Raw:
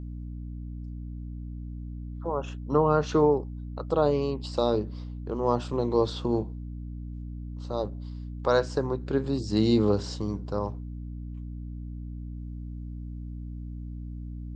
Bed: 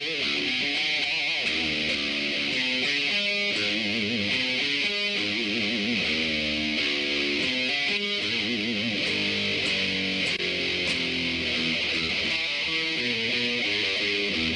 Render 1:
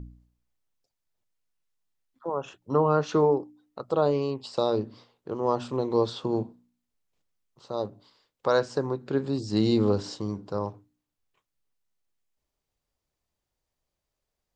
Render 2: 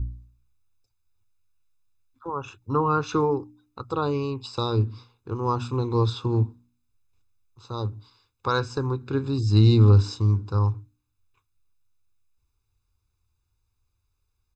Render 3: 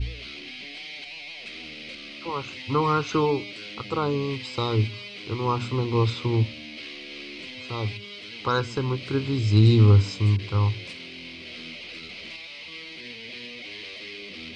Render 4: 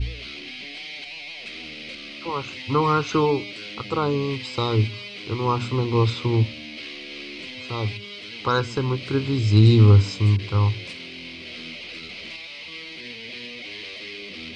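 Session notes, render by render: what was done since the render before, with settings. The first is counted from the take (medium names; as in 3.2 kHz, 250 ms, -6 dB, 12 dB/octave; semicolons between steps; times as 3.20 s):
de-hum 60 Hz, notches 5
resonant low shelf 130 Hz +7 dB, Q 3; comb 0.8 ms, depth 82%
add bed -13 dB
trim +2.5 dB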